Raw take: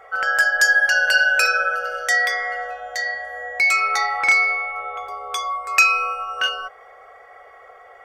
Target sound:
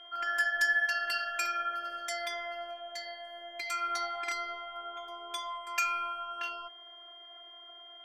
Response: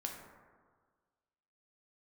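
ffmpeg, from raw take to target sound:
-af "afftfilt=real='hypot(re,im)*cos(PI*b)':imag='0':win_size=512:overlap=0.75,aeval=exprs='val(0)+0.01*sin(2*PI*3200*n/s)':channel_layout=same,volume=-9dB"

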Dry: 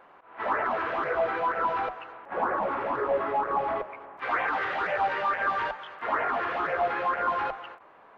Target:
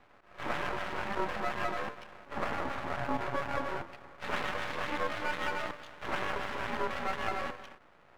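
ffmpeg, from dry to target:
ffmpeg -i in.wav -af "aeval=exprs='val(0)*sin(2*PI*290*n/s)':channel_layout=same,aeval=exprs='max(val(0),0)':channel_layout=same" out.wav

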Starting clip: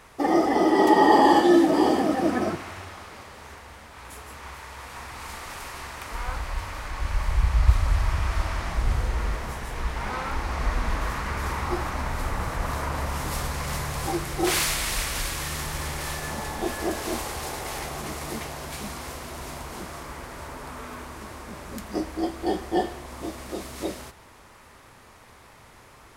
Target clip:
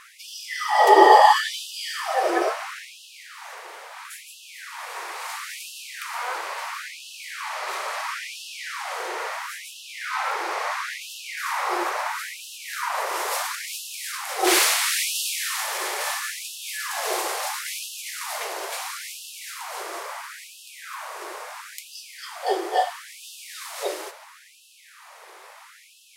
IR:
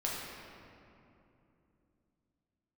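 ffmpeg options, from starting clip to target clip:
-filter_complex "[0:a]asettb=1/sr,asplit=3[link_01][link_02][link_03];[link_01]atrim=end=13.554[link_04];[link_02]atrim=start=13.55:end=14.29,asetpts=PTS-STARTPTS,afade=type=in:duration=0.004:curve=qsin,afade=type=out:start_time=0.736:duration=0.004:curve=qsin,aeval=exprs='0.158*(cos(1*acos(clip(val(0)/0.158,-1,1)))-cos(1*PI/2))+0.0141*(cos(3*acos(clip(val(0)/0.158,-1,1)))-cos(3*PI/2))':channel_layout=same[link_05];[link_03]atrim=start=14.286[link_06];[link_04][link_05]acrossfade=duration=0.004:curve1=hsin:curve2=qsin[link_07];[link_07][link_06]acrossfade=duration=0.004:curve1=qsin:curve2=hsin,asplit=2[link_08][link_09];[1:a]atrim=start_sample=2205,afade=type=out:start_time=0.32:duration=0.01,atrim=end_sample=14553,asetrate=52920,aresample=44100[link_10];[link_09][link_10]afir=irnorm=-1:irlink=0,volume=-9dB[link_11];[link_08][link_11]amix=inputs=2:normalize=0,afftfilt=real='re*gte(b*sr/1024,330*pow(2600/330,0.5+0.5*sin(2*PI*0.74*pts/sr)))':imag='im*gte(b*sr/1024,330*pow(2600/330,0.5+0.5*sin(2*PI*0.74*pts/sr)))':win_size=1024:overlap=0.75,volume=3.5dB"

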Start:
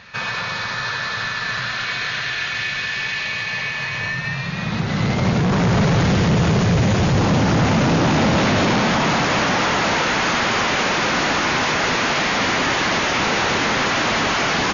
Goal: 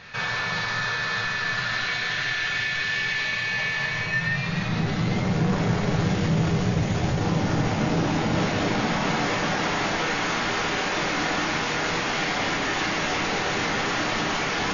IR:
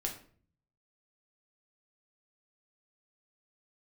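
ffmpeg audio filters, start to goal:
-filter_complex "[0:a]alimiter=limit=-18.5dB:level=0:latency=1:release=38[link_01];[1:a]atrim=start_sample=2205,atrim=end_sample=3528[link_02];[link_01][link_02]afir=irnorm=-1:irlink=0,volume=-1.5dB"

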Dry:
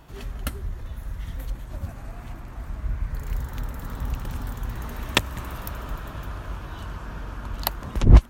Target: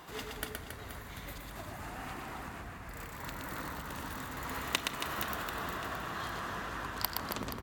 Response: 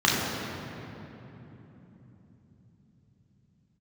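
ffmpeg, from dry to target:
-filter_complex "[0:a]acompressor=threshold=-33dB:ratio=6,highpass=frequency=460:poles=1,aecho=1:1:130|299|518.7|804.3|1176:0.631|0.398|0.251|0.158|0.1,asetrate=48000,aresample=44100,asplit=2[link_01][link_02];[1:a]atrim=start_sample=2205[link_03];[link_02][link_03]afir=irnorm=-1:irlink=0,volume=-29.5dB[link_04];[link_01][link_04]amix=inputs=2:normalize=0,volume=3.5dB"

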